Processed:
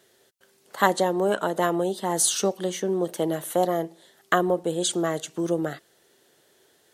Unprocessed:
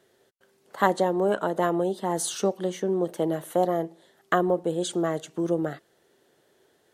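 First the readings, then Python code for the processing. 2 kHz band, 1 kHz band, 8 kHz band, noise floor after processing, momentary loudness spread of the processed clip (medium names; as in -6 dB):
+3.5 dB, +1.5 dB, +8.5 dB, -63 dBFS, 7 LU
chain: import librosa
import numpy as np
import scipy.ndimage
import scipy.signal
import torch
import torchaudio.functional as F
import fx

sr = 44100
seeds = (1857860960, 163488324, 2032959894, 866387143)

y = fx.high_shelf(x, sr, hz=2200.0, db=9.0)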